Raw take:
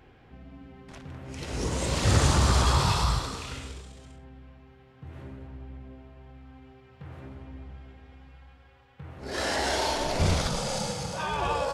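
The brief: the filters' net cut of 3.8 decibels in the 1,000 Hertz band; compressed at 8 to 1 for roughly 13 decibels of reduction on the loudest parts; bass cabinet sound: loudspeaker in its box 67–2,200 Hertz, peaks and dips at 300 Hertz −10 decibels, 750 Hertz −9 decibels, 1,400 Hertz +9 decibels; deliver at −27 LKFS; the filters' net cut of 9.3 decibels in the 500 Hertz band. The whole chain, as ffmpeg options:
ffmpeg -i in.wav -af "equalizer=frequency=500:width_type=o:gain=-7.5,equalizer=frequency=1000:width_type=o:gain=-4,acompressor=threshold=-31dB:ratio=8,highpass=frequency=67:width=0.5412,highpass=frequency=67:width=1.3066,equalizer=frequency=300:width_type=q:width=4:gain=-10,equalizer=frequency=750:width_type=q:width=4:gain=-9,equalizer=frequency=1400:width_type=q:width=4:gain=9,lowpass=frequency=2200:width=0.5412,lowpass=frequency=2200:width=1.3066,volume=12.5dB" out.wav

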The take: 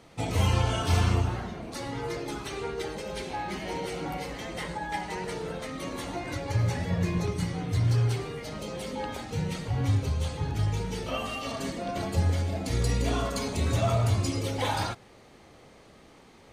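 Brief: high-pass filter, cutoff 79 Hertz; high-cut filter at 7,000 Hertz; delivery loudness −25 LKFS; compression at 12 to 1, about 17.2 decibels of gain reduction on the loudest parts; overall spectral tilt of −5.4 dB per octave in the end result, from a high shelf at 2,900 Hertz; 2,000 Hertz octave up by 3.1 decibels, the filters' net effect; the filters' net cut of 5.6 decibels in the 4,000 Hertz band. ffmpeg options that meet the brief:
ffmpeg -i in.wav -af "highpass=79,lowpass=7000,equalizer=frequency=2000:width_type=o:gain=8,highshelf=frequency=2900:gain=-8.5,equalizer=frequency=4000:width_type=o:gain=-4,acompressor=threshold=-39dB:ratio=12,volume=18dB" out.wav

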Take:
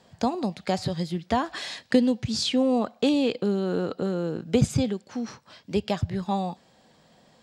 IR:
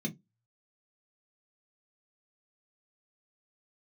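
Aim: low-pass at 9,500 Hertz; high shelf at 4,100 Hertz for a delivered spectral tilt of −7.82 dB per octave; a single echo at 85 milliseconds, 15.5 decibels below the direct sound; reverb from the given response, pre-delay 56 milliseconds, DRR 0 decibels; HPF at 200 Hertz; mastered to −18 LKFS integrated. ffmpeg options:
-filter_complex "[0:a]highpass=200,lowpass=9500,highshelf=frequency=4100:gain=-4,aecho=1:1:85:0.168,asplit=2[link_01][link_02];[1:a]atrim=start_sample=2205,adelay=56[link_03];[link_02][link_03]afir=irnorm=-1:irlink=0,volume=-1dB[link_04];[link_01][link_04]amix=inputs=2:normalize=0,volume=-3.5dB"

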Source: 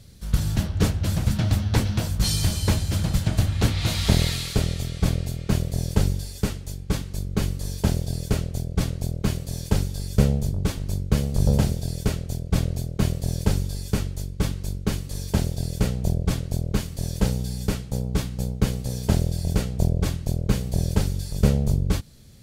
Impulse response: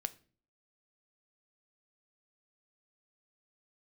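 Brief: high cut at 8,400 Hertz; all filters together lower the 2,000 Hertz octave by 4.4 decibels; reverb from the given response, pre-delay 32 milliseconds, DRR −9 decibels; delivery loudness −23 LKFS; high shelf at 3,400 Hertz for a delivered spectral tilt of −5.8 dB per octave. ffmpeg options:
-filter_complex "[0:a]lowpass=8400,equalizer=frequency=2000:width_type=o:gain=-7,highshelf=frequency=3400:gain=3.5,asplit=2[link_01][link_02];[1:a]atrim=start_sample=2205,adelay=32[link_03];[link_02][link_03]afir=irnorm=-1:irlink=0,volume=9.5dB[link_04];[link_01][link_04]amix=inputs=2:normalize=0,volume=-7dB"

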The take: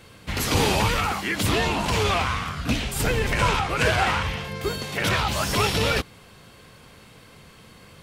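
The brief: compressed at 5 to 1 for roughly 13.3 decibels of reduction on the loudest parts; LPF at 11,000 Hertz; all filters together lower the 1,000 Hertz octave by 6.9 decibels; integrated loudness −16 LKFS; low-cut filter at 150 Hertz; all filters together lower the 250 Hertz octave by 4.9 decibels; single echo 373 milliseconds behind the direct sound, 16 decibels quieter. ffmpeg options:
ffmpeg -i in.wav -af "highpass=150,lowpass=11000,equalizer=frequency=250:width_type=o:gain=-5,equalizer=frequency=1000:width_type=o:gain=-9,acompressor=threshold=-36dB:ratio=5,aecho=1:1:373:0.158,volume=21dB" out.wav

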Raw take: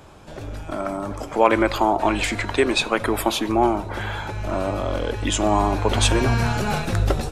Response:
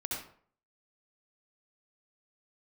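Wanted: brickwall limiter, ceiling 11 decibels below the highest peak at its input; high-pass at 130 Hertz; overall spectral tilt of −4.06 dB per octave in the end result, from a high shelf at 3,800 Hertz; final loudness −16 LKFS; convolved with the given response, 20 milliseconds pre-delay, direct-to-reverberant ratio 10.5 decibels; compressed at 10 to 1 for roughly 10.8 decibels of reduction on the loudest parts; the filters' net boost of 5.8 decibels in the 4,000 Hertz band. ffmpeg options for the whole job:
-filter_complex "[0:a]highpass=130,highshelf=frequency=3800:gain=3.5,equalizer=frequency=4000:width_type=o:gain=5,acompressor=threshold=-22dB:ratio=10,alimiter=limit=-20.5dB:level=0:latency=1,asplit=2[link_01][link_02];[1:a]atrim=start_sample=2205,adelay=20[link_03];[link_02][link_03]afir=irnorm=-1:irlink=0,volume=-13dB[link_04];[link_01][link_04]amix=inputs=2:normalize=0,volume=14dB"

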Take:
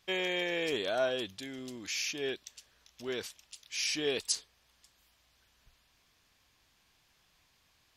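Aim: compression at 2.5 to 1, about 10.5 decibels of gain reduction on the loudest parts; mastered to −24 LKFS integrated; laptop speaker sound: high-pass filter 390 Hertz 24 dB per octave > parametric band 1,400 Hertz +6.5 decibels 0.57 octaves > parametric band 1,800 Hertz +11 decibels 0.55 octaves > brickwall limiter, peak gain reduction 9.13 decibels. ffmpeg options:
ffmpeg -i in.wav -af "acompressor=threshold=-42dB:ratio=2.5,highpass=frequency=390:width=0.5412,highpass=frequency=390:width=1.3066,equalizer=frequency=1400:width_type=o:width=0.57:gain=6.5,equalizer=frequency=1800:width_type=o:width=0.55:gain=11,volume=19dB,alimiter=limit=-14.5dB:level=0:latency=1" out.wav

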